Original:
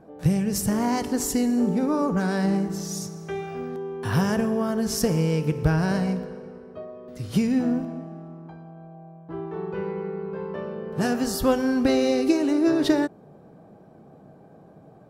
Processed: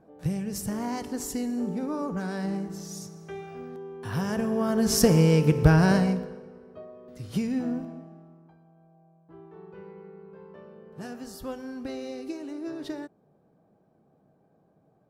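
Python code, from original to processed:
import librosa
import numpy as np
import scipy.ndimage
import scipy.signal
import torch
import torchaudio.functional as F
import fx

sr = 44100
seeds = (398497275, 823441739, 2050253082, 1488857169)

y = fx.gain(x, sr, db=fx.line((4.16, -7.5), (4.96, 3.5), (5.91, 3.5), (6.47, -6.0), (7.86, -6.0), (8.58, -15.0)))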